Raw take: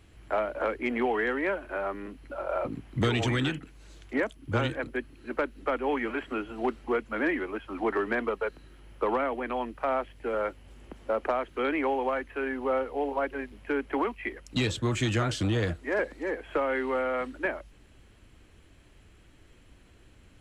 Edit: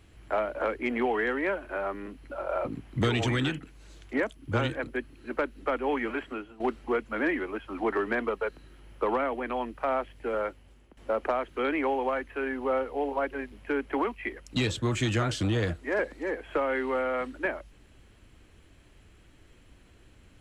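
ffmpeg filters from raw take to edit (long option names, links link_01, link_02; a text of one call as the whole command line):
ffmpeg -i in.wav -filter_complex "[0:a]asplit=3[link_01][link_02][link_03];[link_01]atrim=end=6.6,asetpts=PTS-STARTPTS,afade=type=out:start_time=6.16:duration=0.44:silence=0.177828[link_04];[link_02]atrim=start=6.6:end=10.97,asetpts=PTS-STARTPTS,afade=type=in:duration=0.004:curve=hsin:silence=0.177828,afade=type=out:start_time=3.76:duration=0.61:silence=0.177828[link_05];[link_03]atrim=start=10.97,asetpts=PTS-STARTPTS,afade=type=in:duration=0.004:curve=hsin:silence=0.177828[link_06];[link_04][link_05][link_06]concat=n=3:v=0:a=1" out.wav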